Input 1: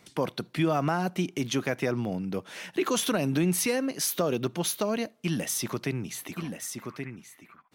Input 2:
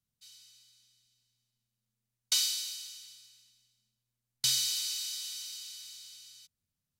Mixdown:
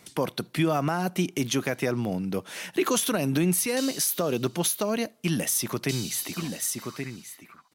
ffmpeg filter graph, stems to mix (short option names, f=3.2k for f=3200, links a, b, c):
-filter_complex "[0:a]equalizer=f=12k:t=o:w=1.3:g=8,volume=2.5dB,asplit=2[a][b];[1:a]adelay=1450,volume=-7.5dB[c];[b]apad=whole_len=372576[d];[c][d]sidechaingate=range=-15dB:threshold=-44dB:ratio=16:detection=peak[e];[a][e]amix=inputs=2:normalize=0,alimiter=limit=-14.5dB:level=0:latency=1:release=225"